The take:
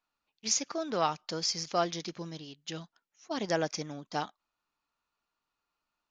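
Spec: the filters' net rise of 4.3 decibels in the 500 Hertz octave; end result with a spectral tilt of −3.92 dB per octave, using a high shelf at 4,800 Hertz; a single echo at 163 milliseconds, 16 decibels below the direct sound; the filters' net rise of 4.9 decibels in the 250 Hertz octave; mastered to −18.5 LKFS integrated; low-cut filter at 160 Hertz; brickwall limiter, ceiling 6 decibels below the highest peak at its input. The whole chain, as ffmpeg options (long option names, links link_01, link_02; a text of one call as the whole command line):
ffmpeg -i in.wav -af "highpass=160,equalizer=frequency=250:width_type=o:gain=6,equalizer=frequency=500:width_type=o:gain=4.5,highshelf=frequency=4800:gain=-6,alimiter=limit=-20dB:level=0:latency=1,aecho=1:1:163:0.158,volume=15.5dB" out.wav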